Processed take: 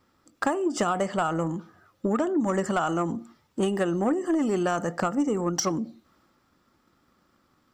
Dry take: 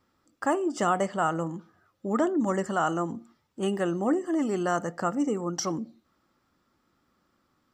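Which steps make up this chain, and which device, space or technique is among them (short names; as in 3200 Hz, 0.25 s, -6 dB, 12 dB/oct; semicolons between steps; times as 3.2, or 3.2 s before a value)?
drum-bus smash (transient shaper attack +7 dB, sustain +3 dB; compressor 12:1, threshold -23 dBFS, peak gain reduction 9 dB; soft clip -19 dBFS, distortion -19 dB); gain +4 dB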